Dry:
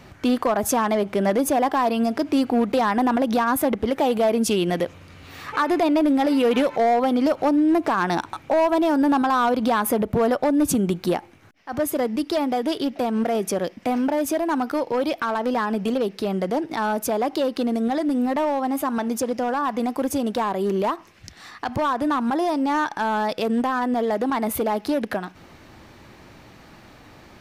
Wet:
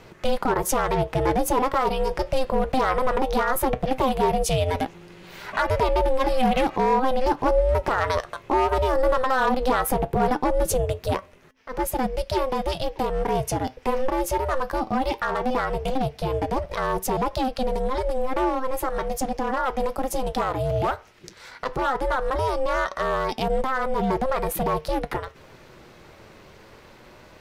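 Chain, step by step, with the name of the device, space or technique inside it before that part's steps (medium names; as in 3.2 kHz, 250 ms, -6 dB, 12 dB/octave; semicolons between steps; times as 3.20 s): alien voice (ring modulator 260 Hz; flange 0.17 Hz, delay 4.2 ms, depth 5.3 ms, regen +75%); trim +6 dB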